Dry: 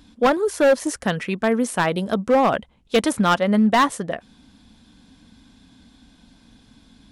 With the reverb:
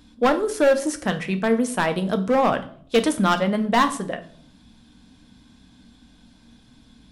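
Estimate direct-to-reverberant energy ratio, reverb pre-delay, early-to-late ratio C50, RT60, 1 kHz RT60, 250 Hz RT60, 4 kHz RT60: 8.0 dB, 3 ms, 15.0 dB, 0.55 s, 0.50 s, 0.85 s, 0.50 s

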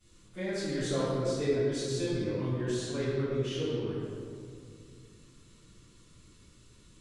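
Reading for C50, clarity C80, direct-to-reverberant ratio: −4.0 dB, −1.5 dB, −16.0 dB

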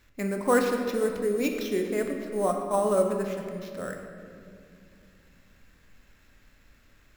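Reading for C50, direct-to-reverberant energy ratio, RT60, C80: 4.5 dB, 3.0 dB, 2.4 s, 5.5 dB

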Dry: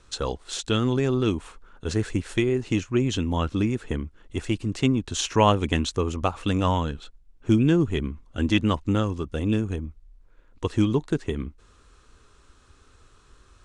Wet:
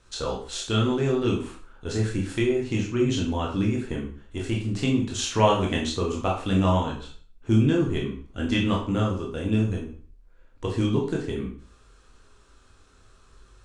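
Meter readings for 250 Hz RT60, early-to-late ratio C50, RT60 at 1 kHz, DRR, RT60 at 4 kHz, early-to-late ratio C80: 0.45 s, 6.0 dB, 0.45 s, −2.0 dB, 0.40 s, 10.5 dB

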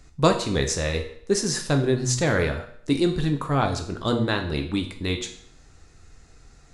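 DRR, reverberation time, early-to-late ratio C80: 5.0 dB, 0.60 s, 13.5 dB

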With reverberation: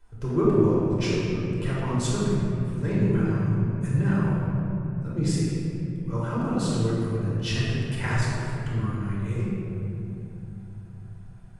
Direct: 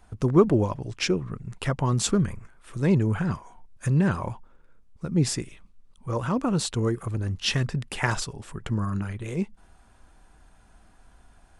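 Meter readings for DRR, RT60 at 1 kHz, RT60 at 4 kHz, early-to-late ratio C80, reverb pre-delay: −8.5 dB, 2.5 s, 1.5 s, −1.0 dB, 3 ms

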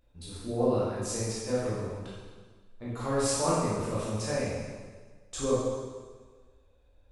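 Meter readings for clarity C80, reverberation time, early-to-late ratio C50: 1.0 dB, 1.5 s, −2.5 dB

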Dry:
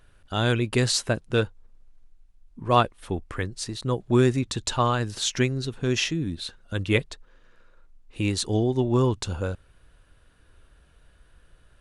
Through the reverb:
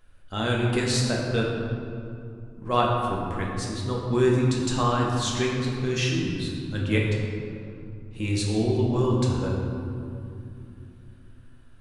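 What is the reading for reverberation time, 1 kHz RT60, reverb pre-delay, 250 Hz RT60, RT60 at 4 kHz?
2.6 s, 2.5 s, 4 ms, 4.0 s, 1.3 s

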